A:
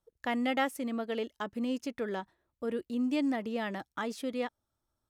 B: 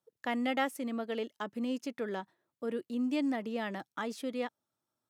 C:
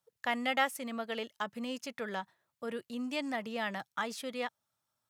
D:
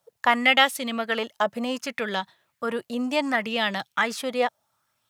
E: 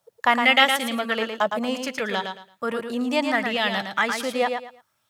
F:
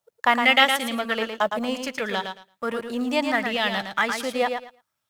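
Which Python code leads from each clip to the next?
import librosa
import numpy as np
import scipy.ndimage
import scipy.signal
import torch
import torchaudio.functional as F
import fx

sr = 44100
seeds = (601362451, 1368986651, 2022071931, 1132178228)

y1 = scipy.signal.sosfilt(scipy.signal.butter(4, 130.0, 'highpass', fs=sr, output='sos'), x)
y1 = y1 * 10.0 ** (-1.5 / 20.0)
y2 = fx.peak_eq(y1, sr, hz=320.0, db=-14.0, octaves=1.2)
y2 = y2 * 10.0 ** (4.5 / 20.0)
y3 = fx.bell_lfo(y2, sr, hz=0.67, low_hz=610.0, high_hz=3900.0, db=10)
y3 = y3 * 10.0 ** (9.0 / 20.0)
y4 = fx.echo_feedback(y3, sr, ms=112, feedback_pct=24, wet_db=-6.0)
y4 = y4 * 10.0 ** (1.0 / 20.0)
y5 = fx.law_mismatch(y4, sr, coded='A')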